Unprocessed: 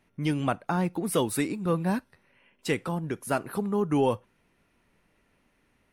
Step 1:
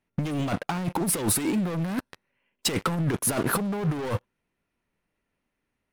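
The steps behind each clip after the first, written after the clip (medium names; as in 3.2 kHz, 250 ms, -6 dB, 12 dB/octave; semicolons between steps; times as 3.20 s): waveshaping leveller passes 5; compressor with a negative ratio -19 dBFS, ratio -0.5; trim -6 dB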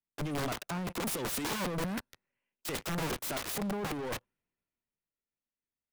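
integer overflow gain 25 dB; three bands expanded up and down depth 40%; trim -5.5 dB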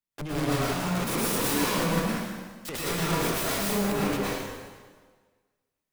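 plate-style reverb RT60 1.5 s, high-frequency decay 0.9×, pre-delay 95 ms, DRR -7.5 dB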